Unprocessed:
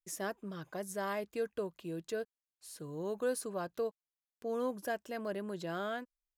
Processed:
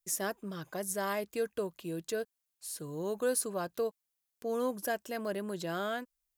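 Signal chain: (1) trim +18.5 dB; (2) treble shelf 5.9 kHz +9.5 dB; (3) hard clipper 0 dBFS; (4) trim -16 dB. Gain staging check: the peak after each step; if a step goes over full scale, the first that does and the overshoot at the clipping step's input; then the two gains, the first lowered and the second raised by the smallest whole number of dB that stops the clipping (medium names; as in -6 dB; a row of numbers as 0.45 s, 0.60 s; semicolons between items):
-5.0 dBFS, -3.0 dBFS, -3.0 dBFS, -19.0 dBFS; nothing clips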